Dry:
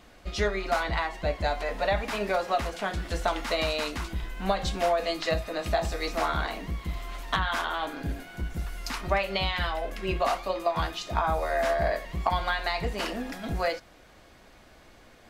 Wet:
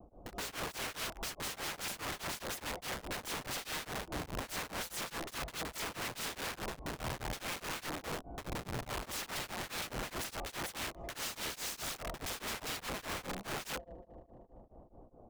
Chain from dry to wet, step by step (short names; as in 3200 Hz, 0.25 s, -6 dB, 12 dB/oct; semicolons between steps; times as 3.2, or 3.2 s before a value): inverse Chebyshev low-pass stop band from 1700 Hz, stop band 40 dB; overloaded stage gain 22 dB; on a send: multi-head echo 76 ms, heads second and third, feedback 59%, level -22.5 dB; on the sum: wrapped overs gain 34.5 dB; vibrato 0.41 Hz 15 cents; beating tremolo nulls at 4.8 Hz; gain +1.5 dB